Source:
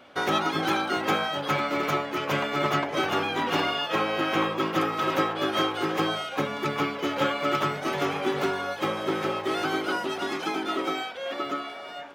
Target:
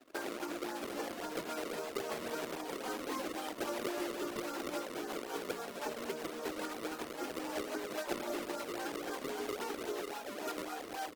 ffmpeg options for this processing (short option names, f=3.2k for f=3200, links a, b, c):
-filter_complex "[0:a]aemphasis=mode=reproduction:type=riaa,asplit=2[a][b];[b]asoftclip=type=tanh:threshold=-19.5dB,volume=-6.5dB[c];[a][c]amix=inputs=2:normalize=0,acompressor=threshold=-28dB:ratio=10,anlmdn=0.398,asetrate=48000,aresample=44100,lowpass=3.3k,asplit=2[d][e];[e]adelay=93,lowpass=f=1.3k:p=1,volume=-23dB,asplit=2[f][g];[g]adelay=93,lowpass=f=1.3k:p=1,volume=0.38,asplit=2[h][i];[i]adelay=93,lowpass=f=1.3k:p=1,volume=0.38[j];[f][h][j]amix=inputs=3:normalize=0[k];[d][k]amix=inputs=2:normalize=0,flanger=delay=3.1:depth=1.6:regen=-6:speed=0.25:shape=triangular,acrusher=samples=31:mix=1:aa=0.000001:lfo=1:lforange=49.6:lforate=3.7,highpass=f=280:w=0.5412,highpass=f=280:w=1.3066,volume=-3dB" -ar 48000 -c:a libopus -b:a 16k